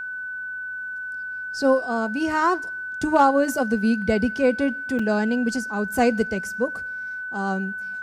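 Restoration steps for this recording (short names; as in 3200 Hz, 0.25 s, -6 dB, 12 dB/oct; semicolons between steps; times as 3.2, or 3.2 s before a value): clip repair -8.5 dBFS; notch 1500 Hz, Q 30; interpolate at 4.99, 4 ms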